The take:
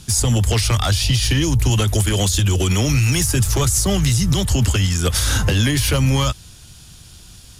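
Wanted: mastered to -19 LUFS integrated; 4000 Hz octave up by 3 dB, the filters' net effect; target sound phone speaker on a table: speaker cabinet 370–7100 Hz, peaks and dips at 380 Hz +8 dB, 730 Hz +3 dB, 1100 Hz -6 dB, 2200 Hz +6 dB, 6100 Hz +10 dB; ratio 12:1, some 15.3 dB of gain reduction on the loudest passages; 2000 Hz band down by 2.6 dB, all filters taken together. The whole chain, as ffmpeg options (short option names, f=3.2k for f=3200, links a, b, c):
-af "equalizer=f=2k:t=o:g=-8.5,equalizer=f=4k:t=o:g=4.5,acompressor=threshold=-29dB:ratio=12,highpass=f=370:w=0.5412,highpass=f=370:w=1.3066,equalizer=f=380:t=q:w=4:g=8,equalizer=f=730:t=q:w=4:g=3,equalizer=f=1.1k:t=q:w=4:g=-6,equalizer=f=2.2k:t=q:w=4:g=6,equalizer=f=6.1k:t=q:w=4:g=10,lowpass=f=7.1k:w=0.5412,lowpass=f=7.1k:w=1.3066,volume=14.5dB"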